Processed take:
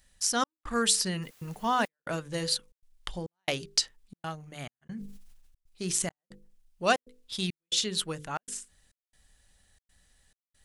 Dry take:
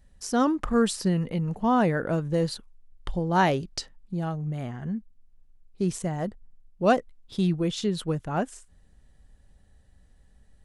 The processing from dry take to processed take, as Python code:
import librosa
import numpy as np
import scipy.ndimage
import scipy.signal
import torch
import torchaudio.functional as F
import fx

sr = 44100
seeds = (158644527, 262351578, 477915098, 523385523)

y = fx.tilt_shelf(x, sr, db=-9.5, hz=1200.0)
y = fx.hum_notches(y, sr, base_hz=50, count=10)
y = fx.step_gate(y, sr, bpm=138, pattern='xxxx..xxxxxx.', floor_db=-60.0, edge_ms=4.5)
y = fx.quant_dither(y, sr, seeds[0], bits=10, dither='triangular', at=(1.22, 1.86), fade=0.02)
y = fx.sustainer(y, sr, db_per_s=39.0, at=(4.81, 6.1), fade=0.02)